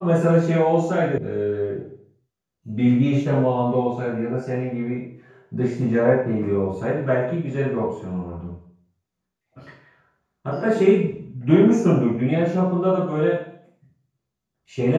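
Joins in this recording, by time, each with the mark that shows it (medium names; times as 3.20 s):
1.18 s: sound stops dead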